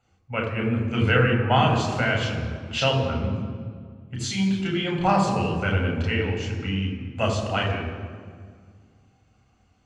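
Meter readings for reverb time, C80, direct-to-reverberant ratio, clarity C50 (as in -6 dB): 1.9 s, 6.5 dB, 0.0 dB, 5.0 dB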